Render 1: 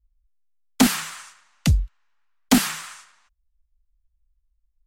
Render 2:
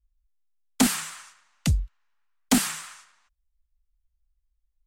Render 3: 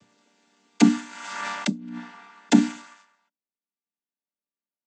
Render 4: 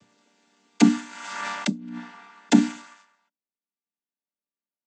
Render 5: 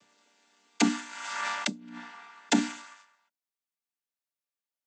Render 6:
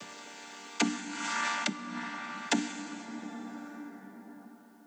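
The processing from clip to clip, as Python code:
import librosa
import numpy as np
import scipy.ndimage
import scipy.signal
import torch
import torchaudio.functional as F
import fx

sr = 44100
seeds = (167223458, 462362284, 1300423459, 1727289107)

y1 = fx.dynamic_eq(x, sr, hz=8500.0, q=1.7, threshold_db=-41.0, ratio=4.0, max_db=6)
y1 = y1 * 10.0 ** (-4.5 / 20.0)
y2 = fx.chord_vocoder(y1, sr, chord='minor triad', root=55)
y2 = fx.hum_notches(y2, sr, base_hz=60, count=5)
y2 = fx.pre_swell(y2, sr, db_per_s=38.0)
y2 = y2 * 10.0 ** (6.5 / 20.0)
y3 = y2
y4 = fx.highpass(y3, sr, hz=660.0, slope=6)
y5 = fx.rev_plate(y4, sr, seeds[0], rt60_s=3.3, hf_ratio=0.5, predelay_ms=0, drr_db=11.5)
y5 = fx.band_squash(y5, sr, depth_pct=70)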